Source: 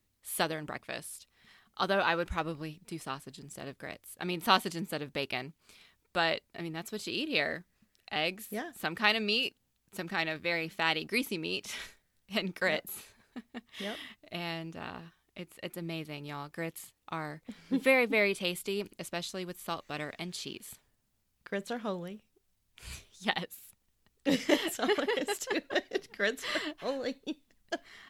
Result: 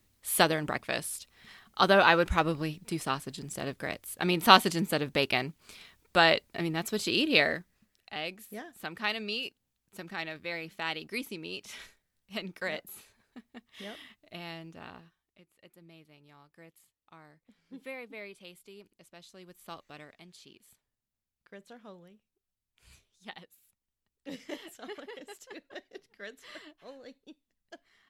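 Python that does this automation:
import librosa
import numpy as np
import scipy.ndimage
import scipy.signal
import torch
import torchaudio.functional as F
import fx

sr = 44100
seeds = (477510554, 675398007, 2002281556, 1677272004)

y = fx.gain(x, sr, db=fx.line((7.33, 7.0), (8.18, -5.0), (14.93, -5.0), (15.42, -17.0), (19.12, -17.0), (19.76, -7.5), (20.19, -14.0)))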